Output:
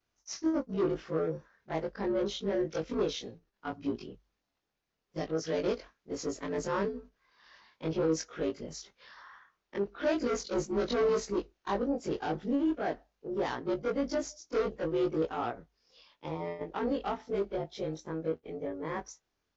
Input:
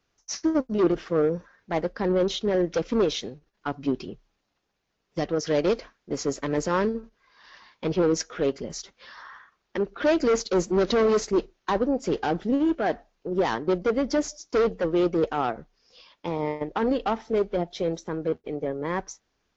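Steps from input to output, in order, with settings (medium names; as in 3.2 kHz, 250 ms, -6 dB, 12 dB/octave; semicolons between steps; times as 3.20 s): short-time spectra conjugated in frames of 50 ms; trim -4.5 dB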